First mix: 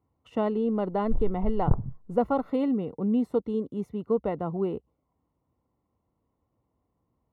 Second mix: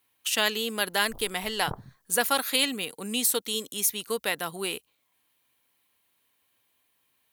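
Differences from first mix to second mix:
speech: remove Savitzky-Golay smoothing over 65 samples
master: add spectral tilt +4.5 dB per octave

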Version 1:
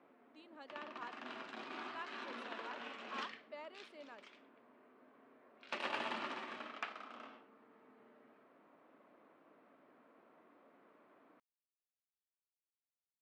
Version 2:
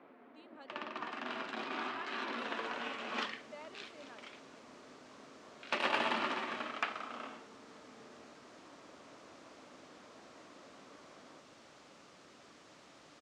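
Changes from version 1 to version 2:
first sound +7.5 dB
second sound: unmuted

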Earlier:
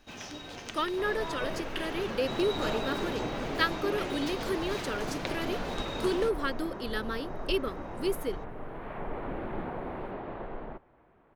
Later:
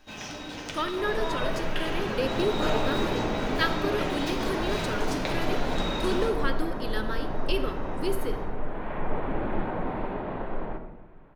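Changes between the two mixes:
second sound +3.5 dB
reverb: on, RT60 1.0 s

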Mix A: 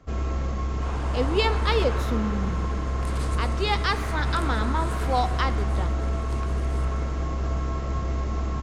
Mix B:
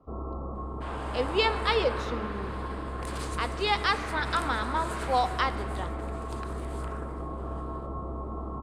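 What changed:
speech: add band-pass filter 290–5,500 Hz
first sound: add Chebyshev low-pass with heavy ripple 1,300 Hz, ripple 3 dB
master: add low-shelf EQ 210 Hz −9 dB

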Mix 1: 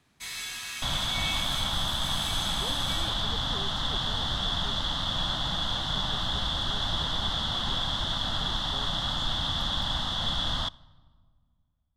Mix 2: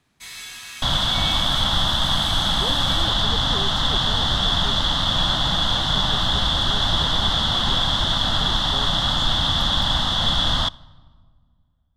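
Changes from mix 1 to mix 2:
speech +9.5 dB
second sound +9.0 dB

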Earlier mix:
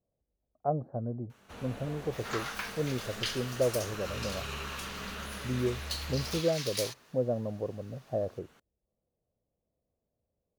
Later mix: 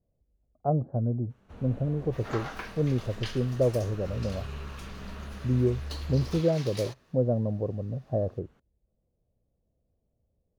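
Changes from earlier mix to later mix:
first sound −6.0 dB
second sound: remove high-pass filter 890 Hz 24 dB per octave
master: add spectral tilt −3 dB per octave

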